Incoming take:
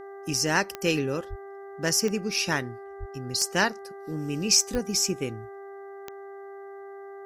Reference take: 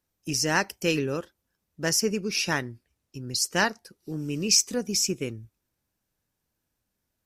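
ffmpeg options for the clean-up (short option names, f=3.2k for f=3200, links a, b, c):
-filter_complex "[0:a]adeclick=t=4,bandreject=f=395.2:t=h:w=4,bandreject=f=790.4:t=h:w=4,bandreject=f=1.1856k:t=h:w=4,bandreject=f=1.5808k:t=h:w=4,bandreject=f=1.976k:t=h:w=4,bandreject=f=690:w=30,asplit=3[a][b][c];[a]afade=t=out:st=1.29:d=0.02[d];[b]highpass=f=140:w=0.5412,highpass=f=140:w=1.3066,afade=t=in:st=1.29:d=0.02,afade=t=out:st=1.41:d=0.02[e];[c]afade=t=in:st=1.41:d=0.02[f];[d][e][f]amix=inputs=3:normalize=0,asplit=3[g][h][i];[g]afade=t=out:st=2.99:d=0.02[j];[h]highpass=f=140:w=0.5412,highpass=f=140:w=1.3066,afade=t=in:st=2.99:d=0.02,afade=t=out:st=3.11:d=0.02[k];[i]afade=t=in:st=3.11:d=0.02[l];[j][k][l]amix=inputs=3:normalize=0,asplit=3[m][n][o];[m]afade=t=out:st=4.72:d=0.02[p];[n]highpass=f=140:w=0.5412,highpass=f=140:w=1.3066,afade=t=in:st=4.72:d=0.02,afade=t=out:st=4.84:d=0.02[q];[o]afade=t=in:st=4.84:d=0.02[r];[p][q][r]amix=inputs=3:normalize=0"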